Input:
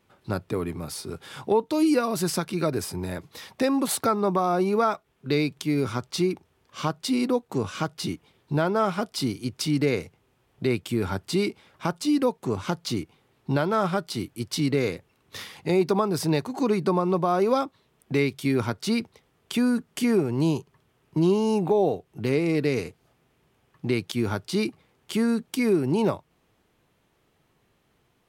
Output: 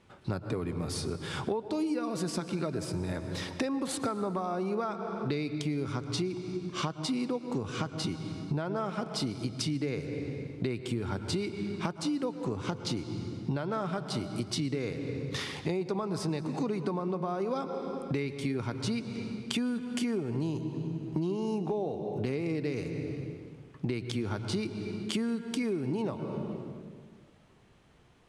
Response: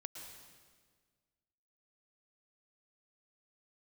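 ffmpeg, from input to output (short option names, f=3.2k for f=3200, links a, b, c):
-filter_complex "[0:a]asplit=2[a][b];[1:a]atrim=start_sample=2205,lowshelf=f=260:g=7,highshelf=f=8.2k:g=-9.5[c];[b][c]afir=irnorm=-1:irlink=0,volume=0.5dB[d];[a][d]amix=inputs=2:normalize=0,acompressor=threshold=-30dB:ratio=6,lowpass=f=9.8k:w=0.5412,lowpass=f=9.8k:w=1.3066"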